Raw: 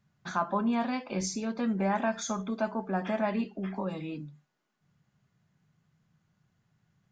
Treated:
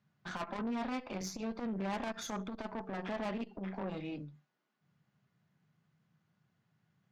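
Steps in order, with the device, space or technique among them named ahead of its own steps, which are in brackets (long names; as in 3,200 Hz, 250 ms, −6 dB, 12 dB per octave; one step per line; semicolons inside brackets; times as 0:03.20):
valve radio (band-pass filter 120–5,000 Hz; tube saturation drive 33 dB, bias 0.65; saturating transformer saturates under 220 Hz)
level +1 dB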